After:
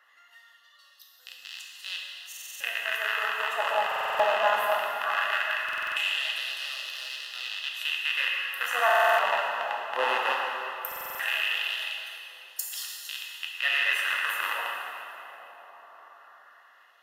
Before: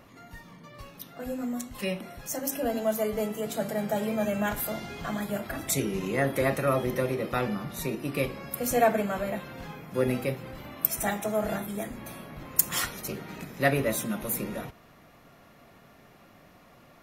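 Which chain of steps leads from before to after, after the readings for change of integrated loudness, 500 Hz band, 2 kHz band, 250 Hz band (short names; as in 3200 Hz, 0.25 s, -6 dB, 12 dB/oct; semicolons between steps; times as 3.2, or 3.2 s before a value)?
+2.0 dB, -4.0 dB, +9.5 dB, under -25 dB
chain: rattling part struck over -36 dBFS, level -10 dBFS; three-band isolator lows -15 dB, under 260 Hz, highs -13 dB, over 2400 Hz; LFO high-pass sine 0.18 Hz 800–4600 Hz; Butterworth band-stop 2300 Hz, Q 3.4; darkening echo 0.776 s, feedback 41%, low-pass 1800 Hz, level -19 dB; plate-style reverb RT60 2.6 s, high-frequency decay 0.85×, DRR -2 dB; stuck buffer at 2.28/3.87/5.64/8.86/10.87, samples 2048, times 6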